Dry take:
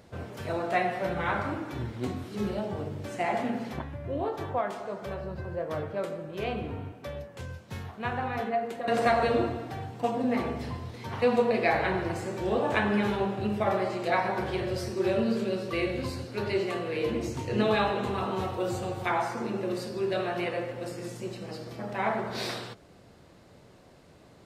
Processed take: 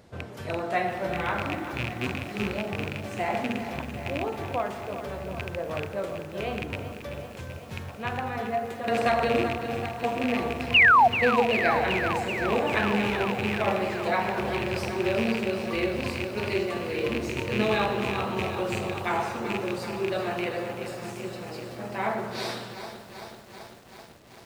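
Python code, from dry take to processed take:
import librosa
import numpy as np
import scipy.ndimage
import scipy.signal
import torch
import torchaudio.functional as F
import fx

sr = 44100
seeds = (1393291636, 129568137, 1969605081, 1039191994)

y = fx.rattle_buzz(x, sr, strikes_db=-32.0, level_db=-19.0)
y = fx.spec_paint(y, sr, seeds[0], shape='fall', start_s=10.74, length_s=0.34, low_hz=660.0, high_hz=3000.0, level_db=-16.0)
y = fx.echo_crushed(y, sr, ms=385, feedback_pct=80, bits=8, wet_db=-10.0)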